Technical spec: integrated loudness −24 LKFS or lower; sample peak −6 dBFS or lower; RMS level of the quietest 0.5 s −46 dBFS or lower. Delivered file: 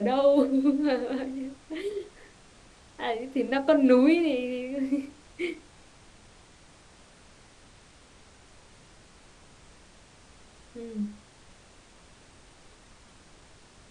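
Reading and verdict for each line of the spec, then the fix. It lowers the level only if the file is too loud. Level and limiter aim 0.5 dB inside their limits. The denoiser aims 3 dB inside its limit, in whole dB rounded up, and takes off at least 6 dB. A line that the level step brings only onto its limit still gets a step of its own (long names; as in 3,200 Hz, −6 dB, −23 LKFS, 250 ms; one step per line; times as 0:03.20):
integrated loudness −26.5 LKFS: in spec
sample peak −9.5 dBFS: in spec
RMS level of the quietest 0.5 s −55 dBFS: in spec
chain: no processing needed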